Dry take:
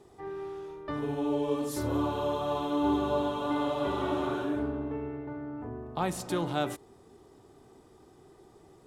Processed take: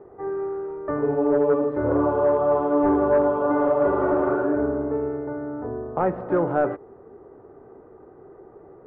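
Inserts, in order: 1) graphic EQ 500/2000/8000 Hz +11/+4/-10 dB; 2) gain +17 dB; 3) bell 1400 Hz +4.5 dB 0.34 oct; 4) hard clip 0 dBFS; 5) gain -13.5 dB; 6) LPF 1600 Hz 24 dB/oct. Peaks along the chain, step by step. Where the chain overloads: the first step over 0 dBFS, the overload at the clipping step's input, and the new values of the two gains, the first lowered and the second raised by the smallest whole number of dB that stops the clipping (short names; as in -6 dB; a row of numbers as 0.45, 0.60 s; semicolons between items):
-10.5, +6.5, +7.0, 0.0, -13.5, -12.0 dBFS; step 2, 7.0 dB; step 2 +10 dB, step 5 -6.5 dB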